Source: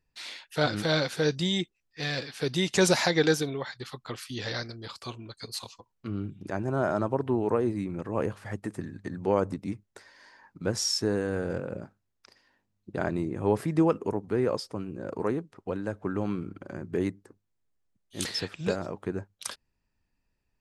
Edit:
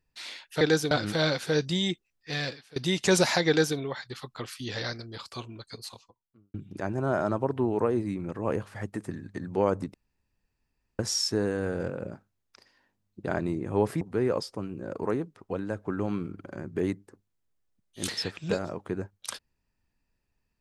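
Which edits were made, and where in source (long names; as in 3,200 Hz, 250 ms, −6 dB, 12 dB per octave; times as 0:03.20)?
0:02.15–0:02.46: fade out quadratic, to −21 dB
0:03.18–0:03.48: duplicate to 0:00.61
0:05.25–0:06.24: fade out and dull
0:09.64–0:10.69: fill with room tone
0:13.71–0:14.18: remove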